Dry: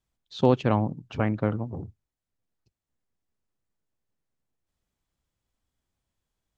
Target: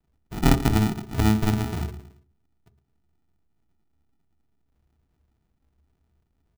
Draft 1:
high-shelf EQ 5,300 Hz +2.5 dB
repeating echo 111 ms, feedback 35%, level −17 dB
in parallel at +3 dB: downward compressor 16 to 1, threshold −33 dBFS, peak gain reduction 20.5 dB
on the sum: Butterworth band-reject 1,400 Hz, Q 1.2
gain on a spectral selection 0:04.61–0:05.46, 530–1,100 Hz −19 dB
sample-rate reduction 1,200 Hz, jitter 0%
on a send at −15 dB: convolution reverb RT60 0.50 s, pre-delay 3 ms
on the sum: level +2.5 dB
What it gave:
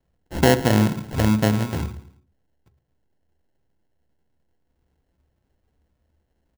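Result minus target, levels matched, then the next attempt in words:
downward compressor: peak gain reduction −8.5 dB; sample-rate reduction: distortion −10 dB
high-shelf EQ 5,300 Hz +2.5 dB
repeating echo 111 ms, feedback 35%, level −17 dB
in parallel at +3 dB: downward compressor 16 to 1, threshold −42 dBFS, peak gain reduction 29 dB
on the sum: Butterworth band-reject 1,400 Hz, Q 1.2
gain on a spectral selection 0:04.61–0:05.46, 530–1,100 Hz −19 dB
sample-rate reduction 540 Hz, jitter 0%
on a send at −15 dB: convolution reverb RT60 0.50 s, pre-delay 3 ms
on the sum: level +2.5 dB

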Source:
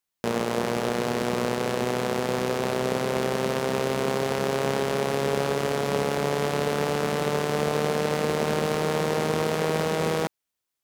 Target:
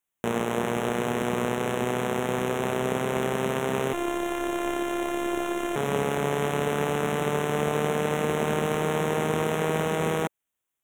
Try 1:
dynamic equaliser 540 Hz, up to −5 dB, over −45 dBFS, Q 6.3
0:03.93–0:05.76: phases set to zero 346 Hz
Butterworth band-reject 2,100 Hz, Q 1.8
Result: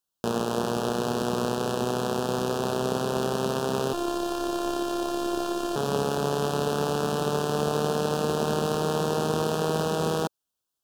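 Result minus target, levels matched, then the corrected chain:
2,000 Hz band −5.5 dB
dynamic equaliser 540 Hz, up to −5 dB, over −45 dBFS, Q 6.3
0:03.93–0:05.76: phases set to zero 346 Hz
Butterworth band-reject 4,700 Hz, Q 1.8

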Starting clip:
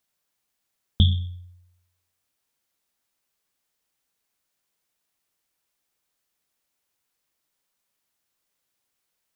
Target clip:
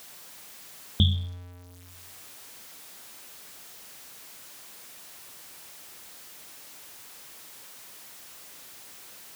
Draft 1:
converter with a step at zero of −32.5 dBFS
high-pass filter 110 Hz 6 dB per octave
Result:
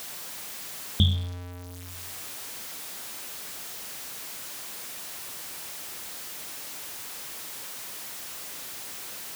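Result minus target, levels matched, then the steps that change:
converter with a step at zero: distortion +8 dB
change: converter with a step at zero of −41 dBFS

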